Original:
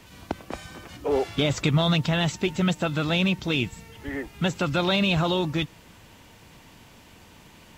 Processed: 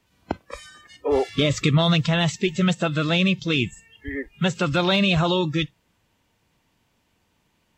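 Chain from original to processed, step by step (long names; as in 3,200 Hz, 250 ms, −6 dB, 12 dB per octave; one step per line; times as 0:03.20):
noise reduction from a noise print of the clip's start 20 dB
level +3 dB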